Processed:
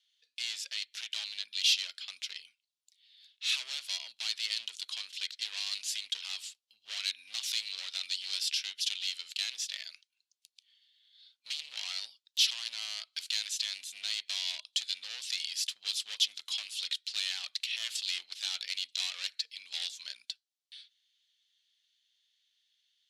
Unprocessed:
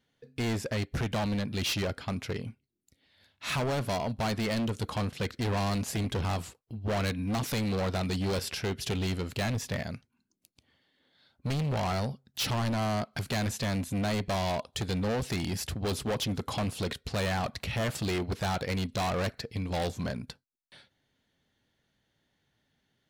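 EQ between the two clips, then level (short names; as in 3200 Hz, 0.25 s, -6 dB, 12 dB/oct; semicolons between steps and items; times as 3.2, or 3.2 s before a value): ladder band-pass 4000 Hz, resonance 40%; high shelf 3100 Hz +11.5 dB; +8.0 dB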